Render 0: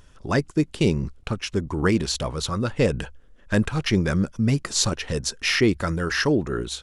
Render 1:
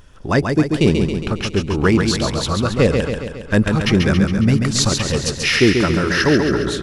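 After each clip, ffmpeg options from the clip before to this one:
-filter_complex "[0:a]equalizer=f=7800:t=o:w=1.2:g=-3.5,asplit=2[s0][s1];[s1]aecho=0:1:137|274|411|548|685|822|959|1096:0.562|0.332|0.196|0.115|0.0681|0.0402|0.0237|0.014[s2];[s0][s2]amix=inputs=2:normalize=0,volume=1.88"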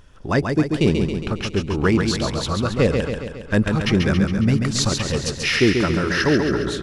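-af "highshelf=f=8600:g=-4.5,volume=0.708"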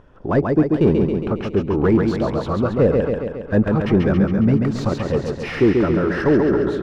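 -filter_complex "[0:a]asplit=2[s0][s1];[s1]highpass=f=720:p=1,volume=7.94,asoftclip=type=tanh:threshold=0.631[s2];[s0][s2]amix=inputs=2:normalize=0,lowpass=f=1500:p=1,volume=0.501,tiltshelf=f=1200:g=9.5,volume=0.422"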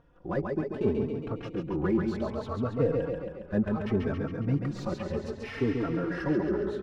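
-filter_complex "[0:a]asplit=2[s0][s1];[s1]adelay=3.8,afreqshift=0.66[s2];[s0][s2]amix=inputs=2:normalize=1,volume=0.376"

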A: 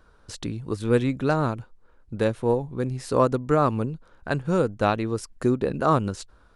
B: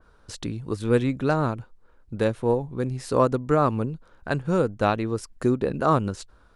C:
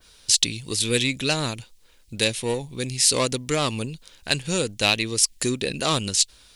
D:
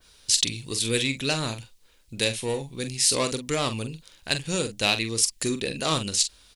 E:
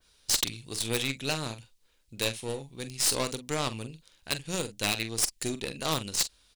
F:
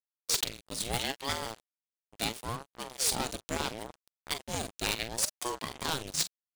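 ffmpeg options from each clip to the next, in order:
-af "adynamicequalizer=threshold=0.0112:dfrequency=2600:dqfactor=0.7:tfrequency=2600:tqfactor=0.7:attack=5:release=100:ratio=0.375:range=2:mode=cutabove:tftype=highshelf"
-filter_complex "[0:a]asplit=2[s0][s1];[s1]asoftclip=type=tanh:threshold=0.1,volume=0.631[s2];[s0][s2]amix=inputs=2:normalize=0,aexciter=amount=11.9:drive=5.8:freq=2100,volume=0.473"
-filter_complex "[0:a]asplit=2[s0][s1];[s1]adelay=44,volume=0.335[s2];[s0][s2]amix=inputs=2:normalize=0,volume=0.708"
-af "aeval=exprs='0.562*(cos(1*acos(clip(val(0)/0.562,-1,1)))-cos(1*PI/2))+0.0631*(cos(4*acos(clip(val(0)/0.562,-1,1)))-cos(4*PI/2))+0.0501*(cos(7*acos(clip(val(0)/0.562,-1,1)))-cos(7*PI/2))':c=same,aeval=exprs='0.188*(abs(mod(val(0)/0.188+3,4)-2)-1)':c=same"
-af "acrusher=bits=5:mix=0:aa=0.5,aeval=exprs='val(0)*sin(2*PI*440*n/s+440*0.65/0.73*sin(2*PI*0.73*n/s))':c=same"

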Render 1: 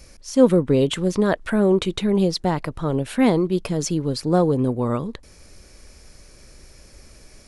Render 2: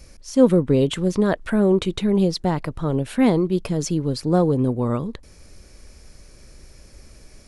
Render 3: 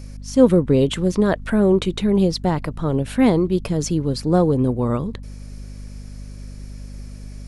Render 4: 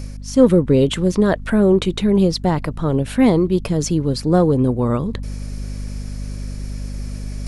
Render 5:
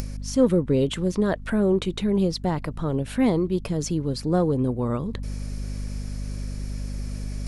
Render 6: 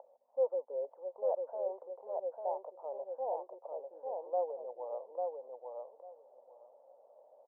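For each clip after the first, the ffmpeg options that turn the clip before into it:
-af "lowshelf=f=330:g=4,volume=0.794"
-af "aeval=exprs='val(0)+0.0178*(sin(2*PI*50*n/s)+sin(2*PI*2*50*n/s)/2+sin(2*PI*3*50*n/s)/3+sin(2*PI*4*50*n/s)/4+sin(2*PI*5*50*n/s)/5)':c=same,volume=1.19"
-af "areverse,acompressor=mode=upward:threshold=0.0794:ratio=2.5,areverse,asoftclip=type=tanh:threshold=0.708,volume=1.33"
-af "acompressor=mode=upward:threshold=0.141:ratio=2.5,volume=0.447"
-filter_complex "[0:a]asuperpass=centerf=680:order=8:qfactor=1.7,asplit=2[s0][s1];[s1]aecho=0:1:847|1694|2541:0.668|0.107|0.0171[s2];[s0][s2]amix=inputs=2:normalize=0,volume=0.501"

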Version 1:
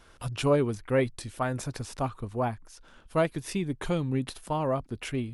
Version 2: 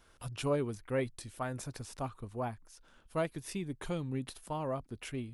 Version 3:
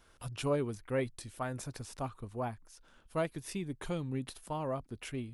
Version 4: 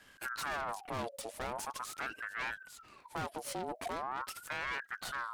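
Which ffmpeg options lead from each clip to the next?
-af "highshelf=f=9000:g=6.5,volume=0.398"
-af anull
-af "aeval=exprs='(tanh(158*val(0)+0.65)-tanh(0.65))/158':c=same,aeval=exprs='val(0)*sin(2*PI*1100*n/s+1100*0.5/0.42*sin(2*PI*0.42*n/s))':c=same,volume=3.16"

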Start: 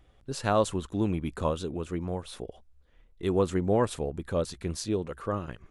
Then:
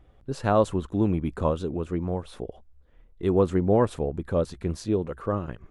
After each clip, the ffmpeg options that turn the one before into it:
-af "highshelf=f=2100:g=-11.5,volume=1.68"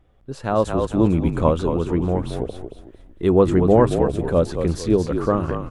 -filter_complex "[0:a]bandreject=f=50:t=h:w=6,bandreject=f=100:t=h:w=6,asplit=2[s0][s1];[s1]asplit=4[s2][s3][s4][s5];[s2]adelay=225,afreqshift=-45,volume=0.422[s6];[s3]adelay=450,afreqshift=-90,volume=0.148[s7];[s4]adelay=675,afreqshift=-135,volume=0.0519[s8];[s5]adelay=900,afreqshift=-180,volume=0.018[s9];[s6][s7][s8][s9]amix=inputs=4:normalize=0[s10];[s0][s10]amix=inputs=2:normalize=0,dynaudnorm=f=490:g=3:m=3.76,volume=0.841"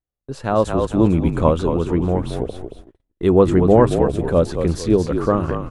-af "agate=range=0.02:threshold=0.0112:ratio=16:detection=peak,volume=1.26"

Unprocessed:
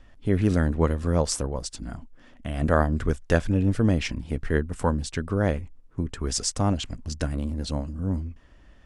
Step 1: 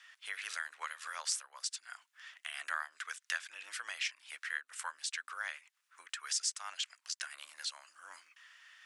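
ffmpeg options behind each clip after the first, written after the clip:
-af "highpass=f=1400:w=0.5412,highpass=f=1400:w=1.3066,acompressor=threshold=0.00316:ratio=2,afreqshift=26,volume=2.24"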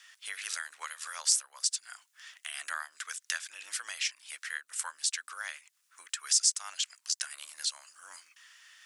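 -af "bass=f=250:g=4,treble=f=4000:g=11"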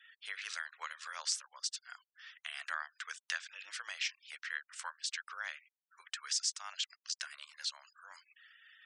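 -af "lowpass=4600,afftfilt=real='re*gte(hypot(re,im),0.00178)':imag='im*gte(hypot(re,im),0.00178)':win_size=1024:overlap=0.75,volume=0.794"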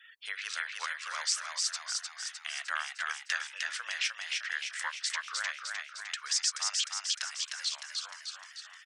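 -filter_complex "[0:a]bandreject=f=50:t=h:w=6,bandreject=f=100:t=h:w=6,bandreject=f=150:t=h:w=6,bandreject=f=200:t=h:w=6,bandreject=f=250:t=h:w=6,bandreject=f=300:t=h:w=6,bandreject=f=350:t=h:w=6,asplit=2[s0][s1];[s1]asplit=8[s2][s3][s4][s5][s6][s7][s8][s9];[s2]adelay=305,afreqshift=63,volume=0.708[s10];[s3]adelay=610,afreqshift=126,volume=0.412[s11];[s4]adelay=915,afreqshift=189,volume=0.237[s12];[s5]adelay=1220,afreqshift=252,volume=0.138[s13];[s6]adelay=1525,afreqshift=315,volume=0.0804[s14];[s7]adelay=1830,afreqshift=378,volume=0.0462[s15];[s8]adelay=2135,afreqshift=441,volume=0.0269[s16];[s9]adelay=2440,afreqshift=504,volume=0.0157[s17];[s10][s11][s12][s13][s14][s15][s16][s17]amix=inputs=8:normalize=0[s18];[s0][s18]amix=inputs=2:normalize=0,volume=1.68"

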